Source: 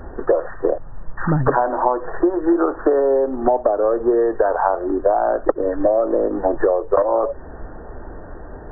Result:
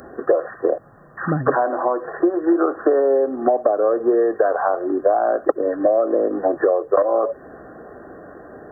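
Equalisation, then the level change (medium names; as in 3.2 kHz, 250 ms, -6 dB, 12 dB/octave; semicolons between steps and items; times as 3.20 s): high-pass 170 Hz 12 dB/octave; Butterworth band-stop 910 Hz, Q 5.6; tone controls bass -1 dB, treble +15 dB; 0.0 dB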